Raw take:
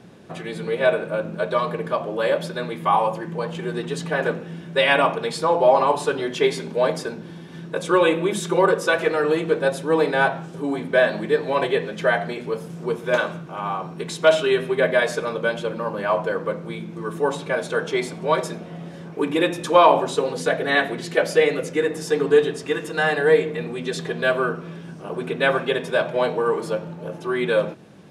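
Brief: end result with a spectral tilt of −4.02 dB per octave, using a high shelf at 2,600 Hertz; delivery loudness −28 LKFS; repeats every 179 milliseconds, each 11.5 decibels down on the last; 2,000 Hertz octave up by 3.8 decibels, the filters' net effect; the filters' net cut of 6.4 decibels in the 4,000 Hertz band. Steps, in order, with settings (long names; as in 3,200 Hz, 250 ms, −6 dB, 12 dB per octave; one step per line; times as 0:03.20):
parametric band 2,000 Hz +8.5 dB
high-shelf EQ 2,600 Hz −4 dB
parametric band 4,000 Hz −9 dB
repeating echo 179 ms, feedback 27%, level −11.5 dB
level −7.5 dB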